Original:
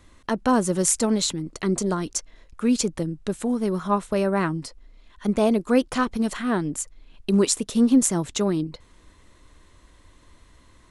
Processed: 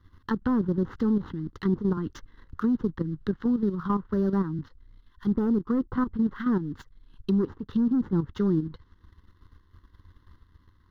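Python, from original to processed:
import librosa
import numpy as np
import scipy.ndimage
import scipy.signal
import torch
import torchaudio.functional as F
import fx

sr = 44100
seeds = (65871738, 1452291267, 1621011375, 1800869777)

y = scipy.ndimage.median_filter(x, 9, mode='constant')
y = fx.env_lowpass_down(y, sr, base_hz=760.0, full_db=-19.5)
y = fx.peak_eq(y, sr, hz=87.0, db=9.5, octaves=0.56)
y = fx.leveller(y, sr, passes=1)
y = fx.level_steps(y, sr, step_db=10)
y = fx.fixed_phaser(y, sr, hz=2400.0, stages=6)
y = fx.band_squash(y, sr, depth_pct=40, at=(1.97, 4.59))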